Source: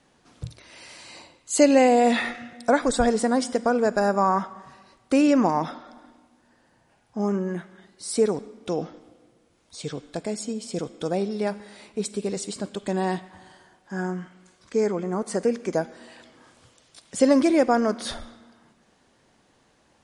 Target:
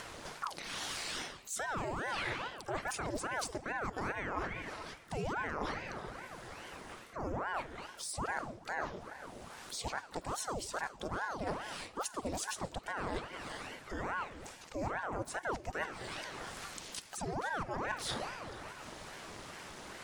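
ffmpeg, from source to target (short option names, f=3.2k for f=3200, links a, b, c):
-filter_complex "[0:a]lowshelf=f=250:g=-4,asplit=2[a][b];[b]acompressor=mode=upward:threshold=-27dB:ratio=2.5,volume=1dB[c];[a][c]amix=inputs=2:normalize=0,alimiter=limit=-10dB:level=0:latency=1:release=49,areverse,acompressor=threshold=-29dB:ratio=10,areverse,asplit=2[d][e];[e]asetrate=88200,aresample=44100,atempo=0.5,volume=-16dB[f];[d][f]amix=inputs=2:normalize=0,aeval=exprs='val(0)*sin(2*PI*700*n/s+700*0.85/2.4*sin(2*PI*2.4*n/s))':c=same,volume=-3dB"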